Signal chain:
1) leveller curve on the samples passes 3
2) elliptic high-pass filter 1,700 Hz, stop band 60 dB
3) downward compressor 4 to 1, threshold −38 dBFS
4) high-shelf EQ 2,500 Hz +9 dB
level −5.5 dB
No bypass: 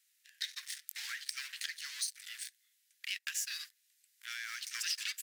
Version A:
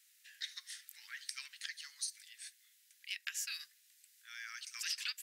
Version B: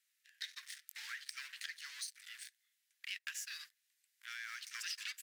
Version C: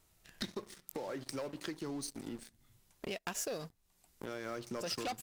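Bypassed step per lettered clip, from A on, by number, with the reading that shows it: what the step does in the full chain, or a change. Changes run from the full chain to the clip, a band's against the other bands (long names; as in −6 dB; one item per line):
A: 1, change in integrated loudness −4.0 LU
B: 4, 8 kHz band −4.5 dB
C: 2, 1 kHz band +18.5 dB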